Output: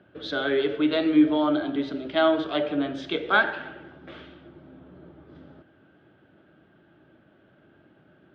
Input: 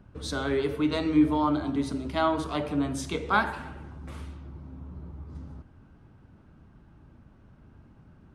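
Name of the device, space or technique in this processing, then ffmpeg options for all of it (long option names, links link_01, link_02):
kitchen radio: -af "highpass=220,equalizer=frequency=230:width_type=q:width=4:gain=-5,equalizer=frequency=340:width_type=q:width=4:gain=6,equalizer=frequency=610:width_type=q:width=4:gain=7,equalizer=frequency=1000:width_type=q:width=4:gain=-9,equalizer=frequency=1600:width_type=q:width=4:gain=7,equalizer=frequency=3300:width_type=q:width=4:gain=9,lowpass=frequency=3900:width=0.5412,lowpass=frequency=3900:width=1.3066,volume=1.5dB"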